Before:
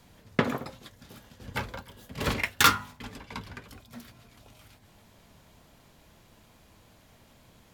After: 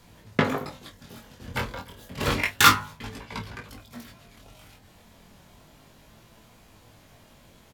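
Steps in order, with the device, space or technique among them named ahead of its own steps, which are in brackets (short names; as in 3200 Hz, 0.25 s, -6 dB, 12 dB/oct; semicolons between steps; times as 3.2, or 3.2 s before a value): double-tracked vocal (doubler 27 ms -11 dB; chorus 0.31 Hz, delay 18 ms, depth 5.1 ms); gain +6.5 dB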